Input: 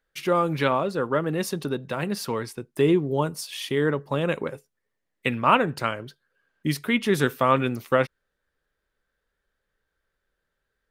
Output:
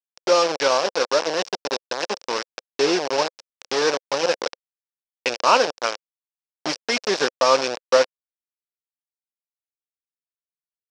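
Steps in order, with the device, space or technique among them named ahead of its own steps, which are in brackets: hand-held game console (bit-crush 4-bit; speaker cabinet 490–5700 Hz, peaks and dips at 520 Hz +5 dB, 1300 Hz -4 dB, 2000 Hz -6 dB, 3300 Hz -4 dB, 5400 Hz +9 dB); gain +4 dB

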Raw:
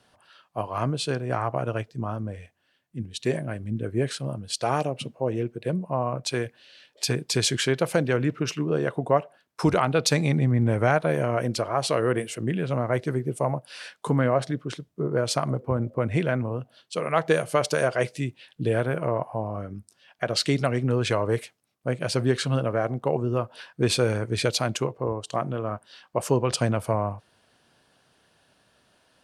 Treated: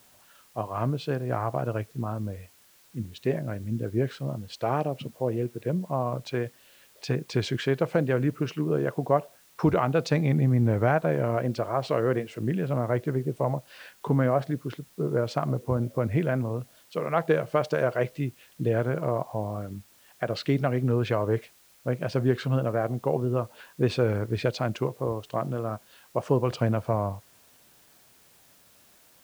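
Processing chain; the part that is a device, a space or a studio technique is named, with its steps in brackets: cassette deck with a dirty head (tape spacing loss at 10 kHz 26 dB; wow and flutter; white noise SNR 31 dB)

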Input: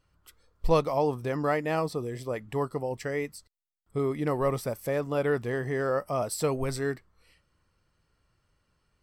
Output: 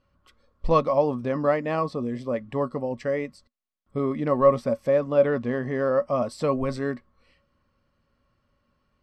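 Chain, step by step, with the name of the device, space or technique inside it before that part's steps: inside a cardboard box (LPF 4600 Hz 12 dB/oct; small resonant body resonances 240/560/1100 Hz, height 13 dB, ringing for 85 ms); 5.26–6.18 LPF 8000 Hz 24 dB/oct

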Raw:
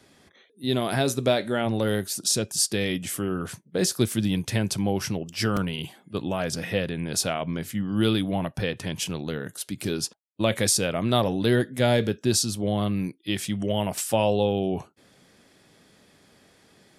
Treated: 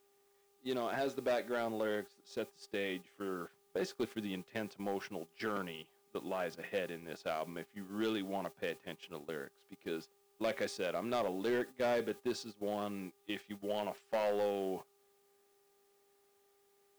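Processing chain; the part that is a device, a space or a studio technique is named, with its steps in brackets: aircraft radio (BPF 330–2600 Hz; hard clip -20.5 dBFS, distortion -14 dB; buzz 400 Hz, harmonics 3, -50 dBFS -9 dB/oct; white noise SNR 22 dB; gate -35 dBFS, range -15 dB); gain -8 dB

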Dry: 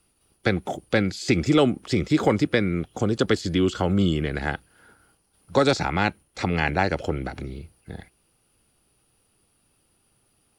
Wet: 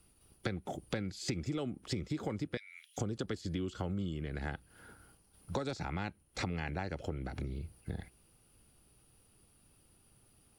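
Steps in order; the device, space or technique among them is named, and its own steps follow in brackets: 2.57–2.98 steep high-pass 2000 Hz 36 dB/oct; ASMR close-microphone chain (low shelf 230 Hz +7.5 dB; compressor 6:1, threshold -32 dBFS, peak gain reduction 19 dB; high shelf 9200 Hz +4.5 dB); gain -3 dB

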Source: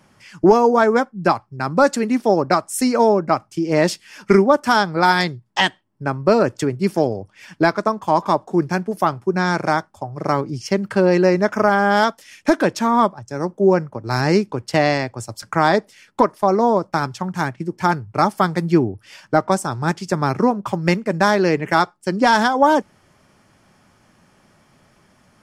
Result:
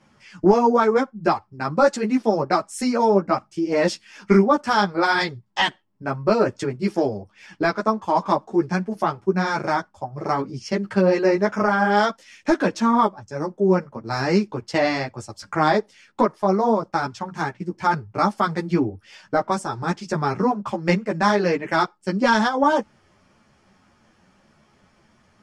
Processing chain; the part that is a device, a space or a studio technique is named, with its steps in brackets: string-machine ensemble chorus (ensemble effect; LPF 7200 Hz 12 dB/oct)

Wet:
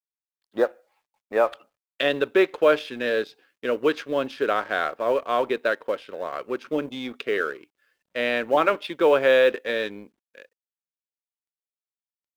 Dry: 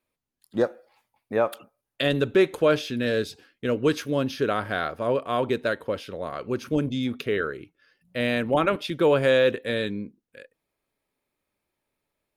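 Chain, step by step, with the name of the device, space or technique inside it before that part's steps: phone line with mismatched companding (BPF 400–3300 Hz; G.711 law mismatch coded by A); gain +4 dB

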